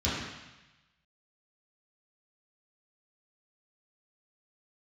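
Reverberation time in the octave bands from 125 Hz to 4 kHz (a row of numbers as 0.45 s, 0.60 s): 1.2 s, 1.0 s, 0.95 s, 1.1 s, 1.2 s, 1.2 s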